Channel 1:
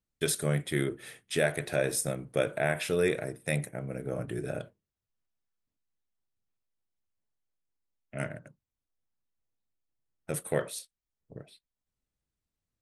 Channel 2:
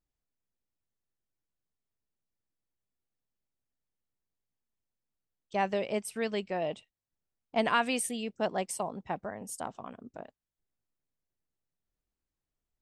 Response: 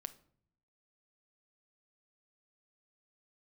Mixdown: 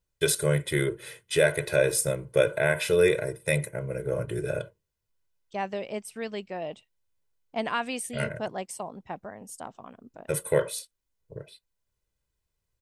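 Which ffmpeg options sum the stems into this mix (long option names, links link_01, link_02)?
-filter_complex "[0:a]aecho=1:1:2:0.9,volume=2dB[link_01];[1:a]volume=-2dB[link_02];[link_01][link_02]amix=inputs=2:normalize=0"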